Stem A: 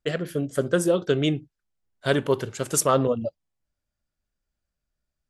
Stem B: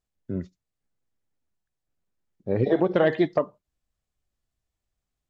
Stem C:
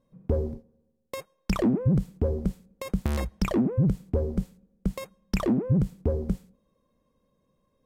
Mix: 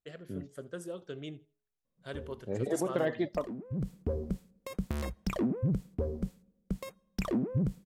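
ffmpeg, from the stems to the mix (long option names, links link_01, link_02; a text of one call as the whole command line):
ffmpeg -i stem1.wav -i stem2.wav -i stem3.wav -filter_complex "[0:a]bandreject=frequency=210.6:width_type=h:width=4,bandreject=frequency=421.2:width_type=h:width=4,bandreject=frequency=631.8:width_type=h:width=4,bandreject=frequency=842.4:width_type=h:width=4,bandreject=frequency=1053:width_type=h:width=4,volume=-19.5dB,asplit=2[link_01][link_02];[link_02]volume=-22dB[link_03];[1:a]volume=-10dB[link_04];[2:a]lowshelf=frequency=96:gain=-3.5,bandreject=frequency=830:width=12,aeval=exprs='0.168*(abs(mod(val(0)/0.168+3,4)-2)-1)':channel_layout=same,adelay=1850,volume=-6dB,afade=type=in:start_time=3.68:duration=0.24:silence=0.266073[link_05];[link_03]aecho=0:1:80|160|240:1|0.2|0.04[link_06];[link_01][link_04][link_05][link_06]amix=inputs=4:normalize=0" out.wav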